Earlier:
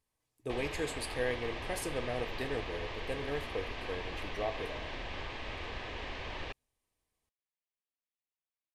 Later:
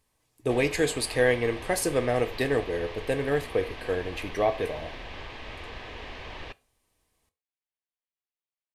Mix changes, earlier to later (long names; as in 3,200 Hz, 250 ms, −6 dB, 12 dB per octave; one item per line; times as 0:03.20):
speech +11.5 dB
background: send on